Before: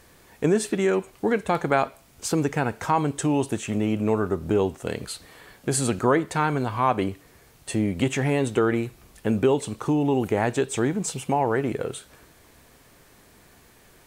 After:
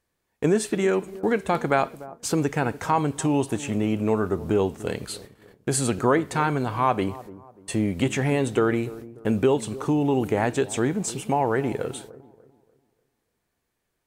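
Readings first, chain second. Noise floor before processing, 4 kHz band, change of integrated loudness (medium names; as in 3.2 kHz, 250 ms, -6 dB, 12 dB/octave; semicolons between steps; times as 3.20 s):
-55 dBFS, 0.0 dB, 0.0 dB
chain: gate -45 dBFS, range -24 dB; feedback echo behind a low-pass 294 ms, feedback 34%, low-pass 920 Hz, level -16.5 dB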